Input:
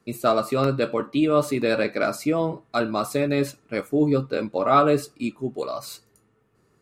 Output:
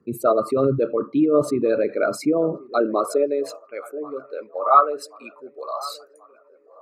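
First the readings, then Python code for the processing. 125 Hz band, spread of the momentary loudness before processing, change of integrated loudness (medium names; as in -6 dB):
-4.5 dB, 11 LU, +2.0 dB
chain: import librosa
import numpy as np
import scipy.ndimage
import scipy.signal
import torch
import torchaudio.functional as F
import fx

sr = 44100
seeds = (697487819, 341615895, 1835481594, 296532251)

y = fx.envelope_sharpen(x, sr, power=2.0)
y = fx.echo_wet_bandpass(y, sr, ms=1083, feedback_pct=57, hz=770.0, wet_db=-18.5)
y = fx.filter_sweep_highpass(y, sr, from_hz=84.0, to_hz=870.0, start_s=1.87, end_s=3.72, q=1.4)
y = y * 10.0 ** (2.0 / 20.0)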